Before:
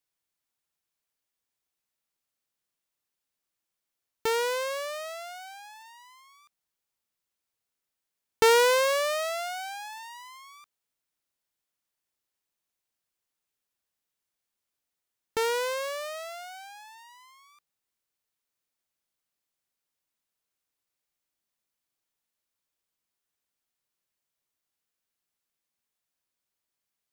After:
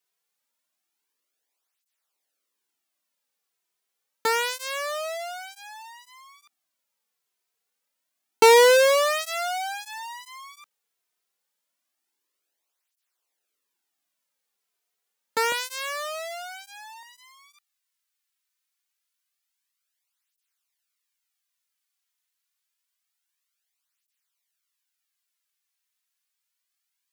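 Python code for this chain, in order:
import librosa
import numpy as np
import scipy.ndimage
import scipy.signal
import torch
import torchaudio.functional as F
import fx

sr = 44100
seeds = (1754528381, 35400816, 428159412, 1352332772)

y = fx.highpass(x, sr, hz=fx.steps((0.0, 280.0), (15.52, 650.0), (17.03, 1400.0)), slope=12)
y = fx.flanger_cancel(y, sr, hz=0.27, depth_ms=3.7)
y = F.gain(torch.from_numpy(y), 8.0).numpy()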